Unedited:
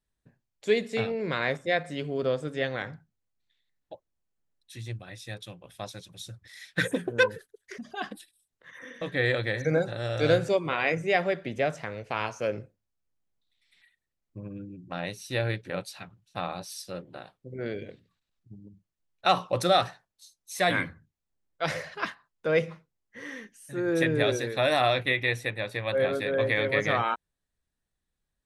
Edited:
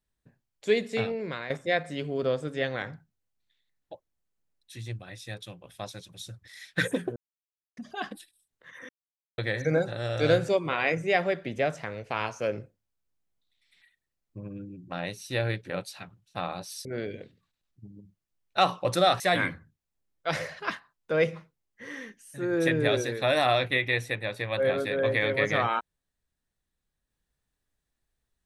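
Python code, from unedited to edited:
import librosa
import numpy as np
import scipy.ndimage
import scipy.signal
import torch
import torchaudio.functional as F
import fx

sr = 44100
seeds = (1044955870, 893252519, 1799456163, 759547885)

y = fx.edit(x, sr, fx.fade_out_to(start_s=1.07, length_s=0.43, floor_db=-12.5),
    fx.silence(start_s=7.16, length_s=0.61),
    fx.silence(start_s=8.89, length_s=0.49),
    fx.cut(start_s=16.85, length_s=0.68),
    fx.cut(start_s=19.88, length_s=0.67), tone=tone)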